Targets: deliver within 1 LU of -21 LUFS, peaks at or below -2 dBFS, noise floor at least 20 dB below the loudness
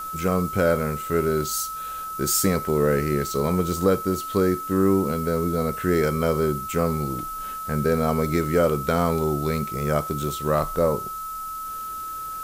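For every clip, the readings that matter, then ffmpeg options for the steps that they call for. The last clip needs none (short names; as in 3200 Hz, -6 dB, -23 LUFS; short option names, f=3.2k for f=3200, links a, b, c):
steady tone 1300 Hz; tone level -30 dBFS; noise floor -33 dBFS; noise floor target -44 dBFS; loudness -24.0 LUFS; peak -9.0 dBFS; loudness target -21.0 LUFS
-> -af "bandreject=f=1.3k:w=30"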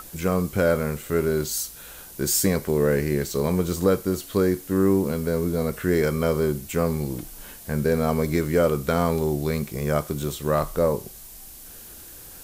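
steady tone none; noise floor -43 dBFS; noise floor target -44 dBFS
-> -af "afftdn=nr=6:nf=-43"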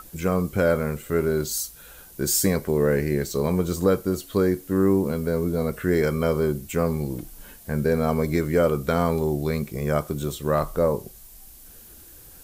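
noise floor -47 dBFS; loudness -24.0 LUFS; peak -10.0 dBFS; loudness target -21.0 LUFS
-> -af "volume=3dB"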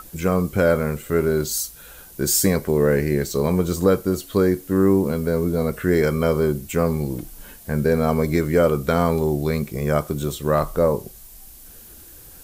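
loudness -21.0 LUFS; peak -7.0 dBFS; noise floor -44 dBFS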